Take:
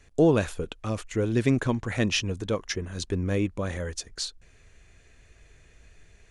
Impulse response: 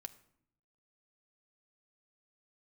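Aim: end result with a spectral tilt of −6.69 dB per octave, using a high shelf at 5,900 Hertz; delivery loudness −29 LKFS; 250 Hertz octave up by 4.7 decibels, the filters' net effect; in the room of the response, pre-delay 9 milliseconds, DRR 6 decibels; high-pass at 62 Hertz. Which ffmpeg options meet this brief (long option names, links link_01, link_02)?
-filter_complex "[0:a]highpass=62,equalizer=frequency=250:width_type=o:gain=6,highshelf=frequency=5900:gain=-9,asplit=2[link_01][link_02];[1:a]atrim=start_sample=2205,adelay=9[link_03];[link_02][link_03]afir=irnorm=-1:irlink=0,volume=-1.5dB[link_04];[link_01][link_04]amix=inputs=2:normalize=0,volume=-5.5dB"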